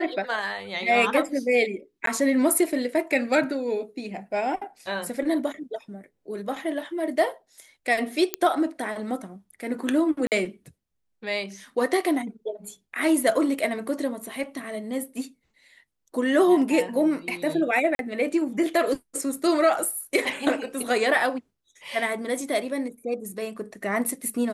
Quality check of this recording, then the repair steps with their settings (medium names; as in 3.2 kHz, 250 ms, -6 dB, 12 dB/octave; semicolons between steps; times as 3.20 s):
2.06–2.07 s: dropout 13 ms
8.34 s: pop -6 dBFS
10.27–10.32 s: dropout 48 ms
17.95–17.99 s: dropout 42 ms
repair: de-click; interpolate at 2.06 s, 13 ms; interpolate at 10.27 s, 48 ms; interpolate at 17.95 s, 42 ms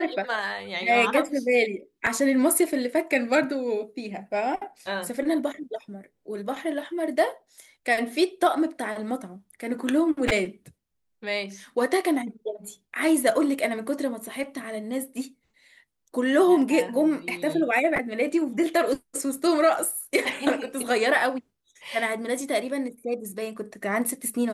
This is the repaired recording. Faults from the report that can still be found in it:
nothing left